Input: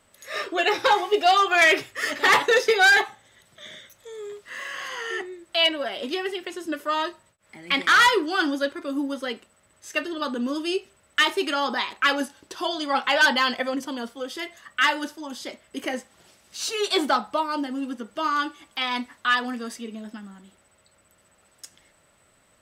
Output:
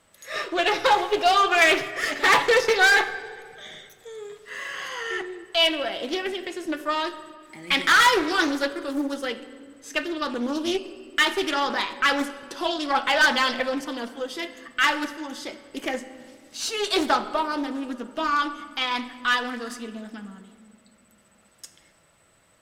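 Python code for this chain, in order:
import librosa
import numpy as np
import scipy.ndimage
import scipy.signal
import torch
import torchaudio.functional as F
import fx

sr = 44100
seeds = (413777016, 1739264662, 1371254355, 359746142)

y = fx.high_shelf(x, sr, hz=5300.0, db=6.5, at=(7.06, 9.28))
y = fx.cheby_harmonics(y, sr, harmonics=(8,), levels_db=(-31,), full_scale_db=-7.5)
y = np.clip(10.0 ** (13.5 / 20.0) * y, -1.0, 1.0) / 10.0 ** (13.5 / 20.0)
y = fx.room_shoebox(y, sr, seeds[0], volume_m3=3900.0, walls='mixed', distance_m=0.71)
y = fx.doppler_dist(y, sr, depth_ms=0.25)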